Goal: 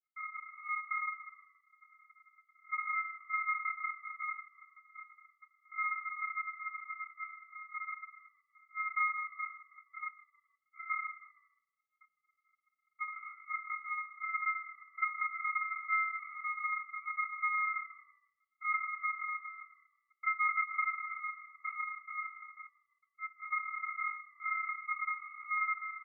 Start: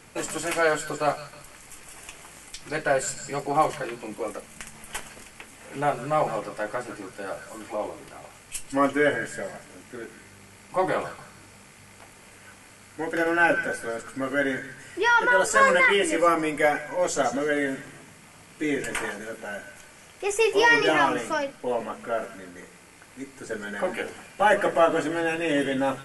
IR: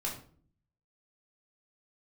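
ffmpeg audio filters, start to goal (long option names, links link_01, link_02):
-filter_complex "[0:a]volume=19dB,asoftclip=hard,volume=-19dB,asplit=2[link_01][link_02];[1:a]atrim=start_sample=2205,asetrate=29547,aresample=44100[link_03];[link_02][link_03]afir=irnorm=-1:irlink=0,volume=-13.5dB[link_04];[link_01][link_04]amix=inputs=2:normalize=0,acrusher=bits=5:mix=0:aa=0.5,asuperpass=centerf=420:order=8:qfactor=7.4,acompressor=threshold=-35dB:ratio=5,aeval=exprs='val(0)*sin(2*PI*1700*n/s)':channel_layout=same,asplit=4[link_05][link_06][link_07][link_08];[link_06]adelay=157,afreqshift=-40,volume=-23.5dB[link_09];[link_07]adelay=314,afreqshift=-80,volume=-30.4dB[link_10];[link_08]adelay=471,afreqshift=-120,volume=-37.4dB[link_11];[link_05][link_09][link_10][link_11]amix=inputs=4:normalize=0,volume=7dB"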